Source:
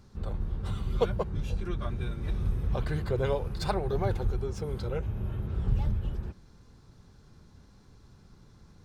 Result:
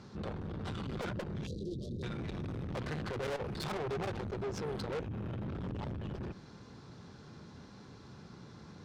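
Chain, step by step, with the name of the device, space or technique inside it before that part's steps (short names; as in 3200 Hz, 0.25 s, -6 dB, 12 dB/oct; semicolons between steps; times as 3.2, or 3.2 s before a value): valve radio (BPF 140–5300 Hz; tube stage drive 42 dB, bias 0.3; core saturation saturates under 180 Hz); 1.47–2.03 elliptic band-stop 480–4100 Hz, stop band 40 dB; gain +9 dB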